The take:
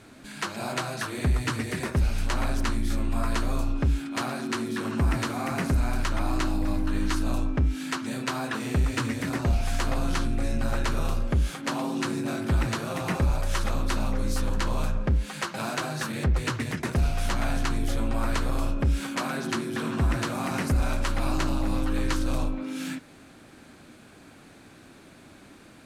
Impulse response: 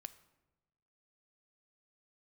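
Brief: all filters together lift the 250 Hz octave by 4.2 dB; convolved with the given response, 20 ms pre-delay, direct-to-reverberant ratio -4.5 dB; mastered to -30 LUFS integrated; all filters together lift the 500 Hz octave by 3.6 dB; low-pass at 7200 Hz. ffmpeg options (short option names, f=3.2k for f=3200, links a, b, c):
-filter_complex "[0:a]lowpass=7.2k,equalizer=f=250:t=o:g=4,equalizer=f=500:t=o:g=3.5,asplit=2[a][b];[1:a]atrim=start_sample=2205,adelay=20[c];[b][c]afir=irnorm=-1:irlink=0,volume=10dB[d];[a][d]amix=inputs=2:normalize=0,volume=-8.5dB"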